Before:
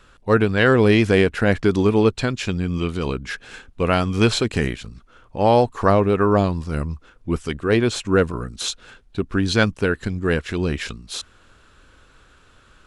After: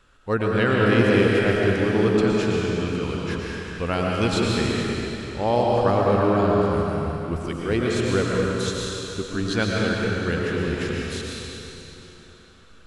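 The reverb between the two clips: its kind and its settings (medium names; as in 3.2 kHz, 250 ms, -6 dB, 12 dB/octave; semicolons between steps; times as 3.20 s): algorithmic reverb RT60 3.5 s, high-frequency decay 0.95×, pre-delay 75 ms, DRR -3.5 dB; trim -7 dB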